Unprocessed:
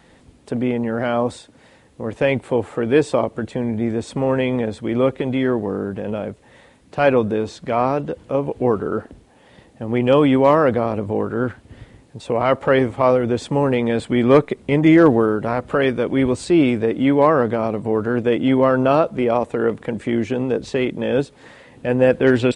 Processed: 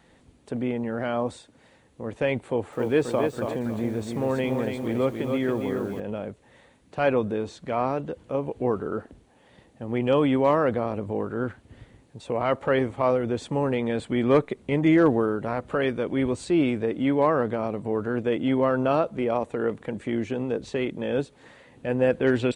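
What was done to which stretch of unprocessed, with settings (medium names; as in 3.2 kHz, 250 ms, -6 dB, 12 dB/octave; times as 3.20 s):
2.44–6.00 s: bit-crushed delay 277 ms, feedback 35%, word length 7-bit, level -5 dB
whole clip: band-stop 5.1 kHz, Q 17; trim -7 dB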